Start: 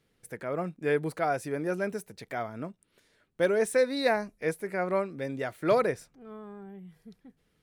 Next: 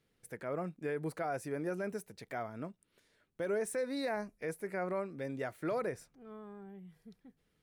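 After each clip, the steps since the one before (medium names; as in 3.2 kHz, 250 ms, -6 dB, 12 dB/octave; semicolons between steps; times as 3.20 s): dynamic bell 3.5 kHz, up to -6 dB, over -51 dBFS, Q 1.6; peak limiter -22.5 dBFS, peak gain reduction 8.5 dB; trim -5 dB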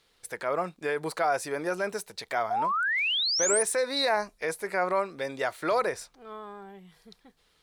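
graphic EQ 125/250/1000/4000/8000 Hz -10/-7/+7/+10/+4 dB; painted sound rise, 2.50–3.63 s, 680–10000 Hz -35 dBFS; trim +8 dB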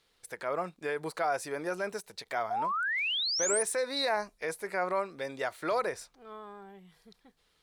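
endings held to a fixed fall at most 570 dB/s; trim -4 dB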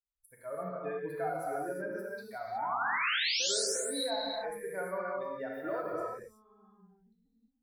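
expander on every frequency bin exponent 2; compression 2.5:1, threshold -36 dBFS, peak gain reduction 6.5 dB; gated-style reverb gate 390 ms flat, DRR -4.5 dB; trim -1 dB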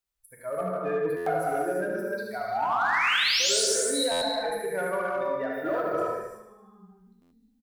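in parallel at -6.5 dB: hard clipper -33 dBFS, distortion -10 dB; on the sum: feedback delay 75 ms, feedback 55%, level -7 dB; buffer glitch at 1.16/4.11/7.21 s, samples 512; trim +4 dB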